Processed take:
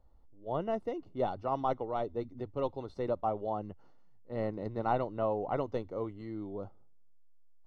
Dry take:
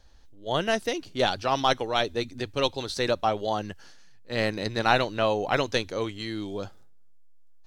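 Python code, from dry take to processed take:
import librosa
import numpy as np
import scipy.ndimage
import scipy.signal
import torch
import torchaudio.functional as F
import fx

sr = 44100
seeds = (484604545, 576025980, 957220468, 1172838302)

y = scipy.signal.savgol_filter(x, 65, 4, mode='constant')
y = y * librosa.db_to_amplitude(-6.5)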